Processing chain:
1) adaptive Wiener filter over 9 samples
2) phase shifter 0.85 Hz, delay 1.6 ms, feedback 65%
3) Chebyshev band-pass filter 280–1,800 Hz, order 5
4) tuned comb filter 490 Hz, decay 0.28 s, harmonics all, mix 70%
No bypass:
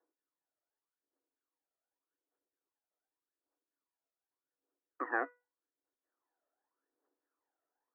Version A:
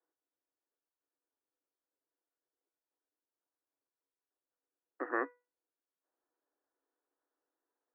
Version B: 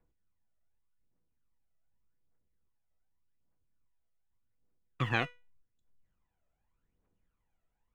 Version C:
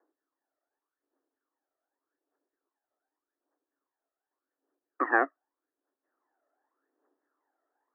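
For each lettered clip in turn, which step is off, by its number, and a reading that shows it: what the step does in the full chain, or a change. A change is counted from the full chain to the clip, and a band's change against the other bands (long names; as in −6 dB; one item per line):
2, 250 Hz band +5.0 dB
3, change in integrated loudness +4.0 LU
4, change in integrated loudness +9.5 LU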